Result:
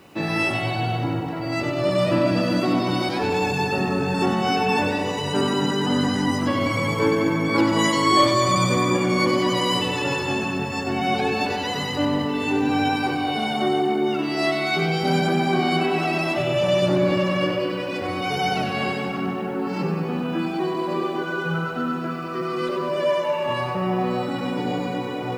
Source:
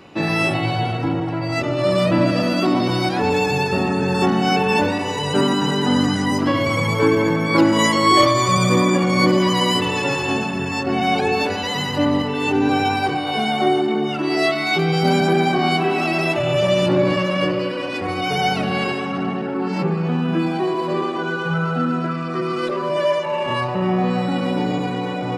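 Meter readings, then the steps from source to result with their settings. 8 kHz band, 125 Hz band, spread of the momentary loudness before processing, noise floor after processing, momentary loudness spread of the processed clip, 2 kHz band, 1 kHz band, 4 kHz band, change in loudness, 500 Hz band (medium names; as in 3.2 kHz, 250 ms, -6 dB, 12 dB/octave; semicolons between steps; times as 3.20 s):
-3.0 dB, -4.0 dB, 7 LU, -28 dBFS, 6 LU, -3.0 dB, -3.0 dB, -3.0 dB, -3.5 dB, -3.0 dB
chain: bit crusher 9-bit; on a send: two-band feedback delay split 850 Hz, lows 197 ms, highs 95 ms, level -6 dB; on the sum: trim -4.5 dB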